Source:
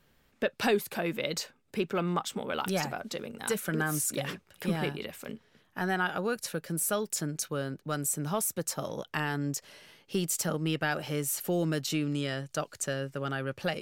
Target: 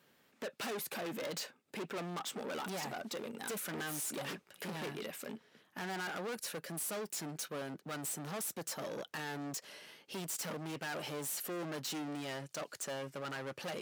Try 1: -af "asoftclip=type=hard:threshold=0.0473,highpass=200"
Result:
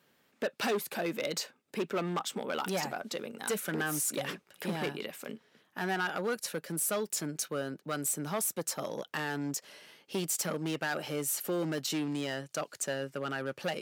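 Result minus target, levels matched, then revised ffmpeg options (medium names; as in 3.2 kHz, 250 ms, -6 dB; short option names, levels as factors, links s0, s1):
hard clipper: distortion -8 dB
-af "asoftclip=type=hard:threshold=0.0133,highpass=200"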